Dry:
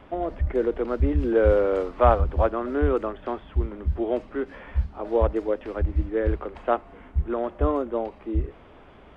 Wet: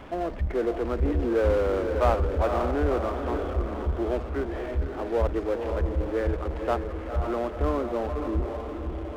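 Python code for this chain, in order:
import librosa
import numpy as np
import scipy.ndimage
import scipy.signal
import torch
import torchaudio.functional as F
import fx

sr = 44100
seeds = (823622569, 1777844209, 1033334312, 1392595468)

y = fx.echo_diffused(x, sr, ms=519, feedback_pct=46, wet_db=-7)
y = fx.power_curve(y, sr, exponent=0.7)
y = y * librosa.db_to_amplitude(-7.5)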